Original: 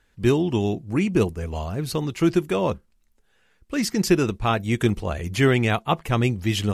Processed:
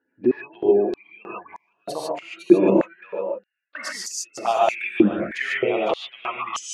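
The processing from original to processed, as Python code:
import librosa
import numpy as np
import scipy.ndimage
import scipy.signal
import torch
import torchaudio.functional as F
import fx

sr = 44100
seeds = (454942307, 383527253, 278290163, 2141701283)

y = fx.wiener(x, sr, points=9)
y = scipy.signal.sosfilt(scipy.signal.butter(4, 12000.0, 'lowpass', fs=sr, output='sos'), y)
y = fx.spec_gate(y, sr, threshold_db=-25, keep='strong')
y = fx.dynamic_eq(y, sr, hz=1900.0, q=1.6, threshold_db=-41.0, ratio=4.0, max_db=5)
y = fx.rider(y, sr, range_db=4, speed_s=0.5)
y = y + 10.0 ** (-10.5 / 20.0) * np.pad(y, (int(506 * sr / 1000.0), 0))[:len(y)]
y = fx.env_flanger(y, sr, rest_ms=11.7, full_db=-18.0)
y = fx.rev_gated(y, sr, seeds[0], gate_ms=170, shape='rising', drr_db=-4.0)
y = fx.filter_held_highpass(y, sr, hz=3.2, low_hz=290.0, high_hz=6500.0)
y = F.gain(torch.from_numpy(y), -4.0).numpy()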